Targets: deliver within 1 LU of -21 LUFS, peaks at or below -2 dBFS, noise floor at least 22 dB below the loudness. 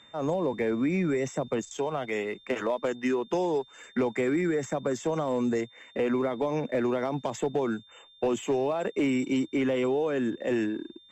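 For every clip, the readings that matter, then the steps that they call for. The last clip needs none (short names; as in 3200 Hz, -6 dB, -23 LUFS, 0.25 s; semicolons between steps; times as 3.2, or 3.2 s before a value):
clipped 0.6%; flat tops at -20.0 dBFS; steady tone 3600 Hz; tone level -54 dBFS; loudness -29.0 LUFS; peak -20.0 dBFS; loudness target -21.0 LUFS
-> clip repair -20 dBFS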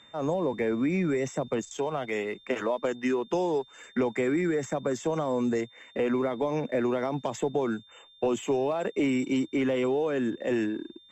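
clipped 0.0%; steady tone 3600 Hz; tone level -54 dBFS
-> notch 3600 Hz, Q 30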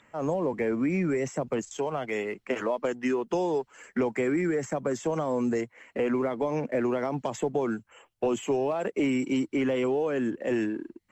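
steady tone none; loudness -29.0 LUFS; peak -17.0 dBFS; loudness target -21.0 LUFS
-> gain +8 dB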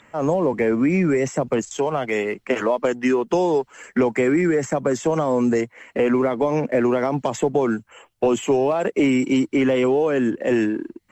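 loudness -21.0 LUFS; peak -9.0 dBFS; noise floor -60 dBFS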